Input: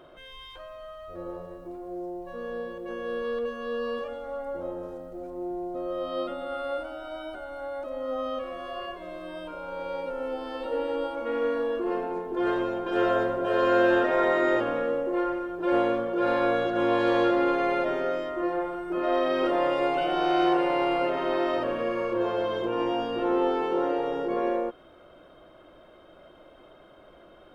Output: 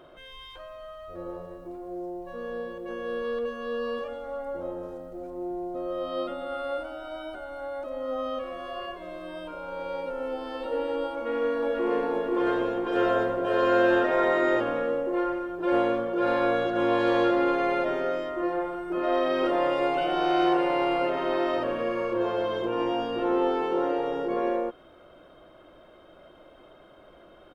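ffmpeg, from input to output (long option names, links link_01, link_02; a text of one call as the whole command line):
ffmpeg -i in.wav -filter_complex "[0:a]asplit=2[link_01][link_02];[link_02]afade=type=in:start_time=11.13:duration=0.01,afade=type=out:start_time=11.93:duration=0.01,aecho=0:1:490|980|1470|1960|2450|2940|3430|3920:0.794328|0.436881|0.240284|0.132156|0.072686|0.0399773|0.0219875|0.0120931[link_03];[link_01][link_03]amix=inputs=2:normalize=0" out.wav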